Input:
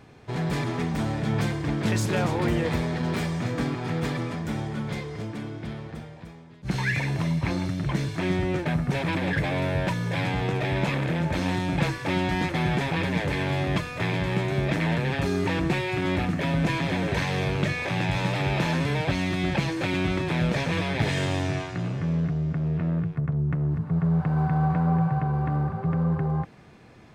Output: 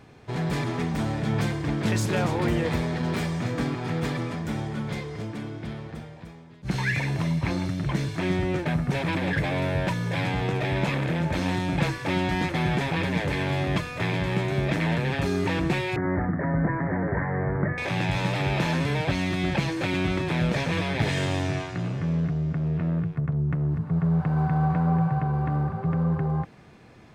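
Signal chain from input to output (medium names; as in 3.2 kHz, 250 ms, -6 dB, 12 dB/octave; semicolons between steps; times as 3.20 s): 15.96–17.78 s: steep low-pass 2 kHz 96 dB/octave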